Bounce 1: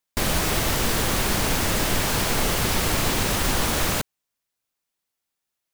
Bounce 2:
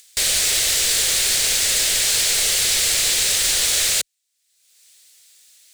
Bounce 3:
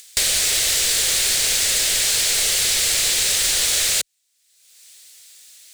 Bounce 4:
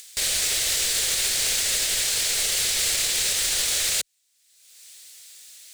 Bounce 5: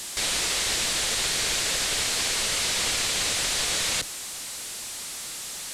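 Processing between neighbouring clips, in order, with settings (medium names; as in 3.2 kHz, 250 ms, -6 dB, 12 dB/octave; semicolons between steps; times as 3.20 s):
graphic EQ 125/250/500/1000/2000/4000/8000 Hz -4/-11/+5/-10/+6/+9/+12 dB; upward compressor, threshold -31 dBFS; tilt EQ +1.5 dB/octave; trim -5 dB
compression 3:1, threshold -23 dBFS, peak gain reduction 6.5 dB; trim +5.5 dB
peak limiter -14 dBFS, peak gain reduction 10 dB
one-bit delta coder 64 kbps, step -29 dBFS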